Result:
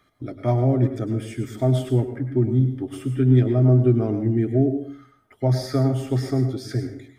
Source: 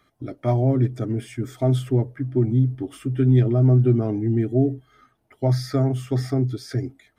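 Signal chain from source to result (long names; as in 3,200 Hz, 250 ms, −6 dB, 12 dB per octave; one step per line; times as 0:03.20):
dense smooth reverb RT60 0.5 s, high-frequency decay 0.85×, pre-delay 90 ms, DRR 7.5 dB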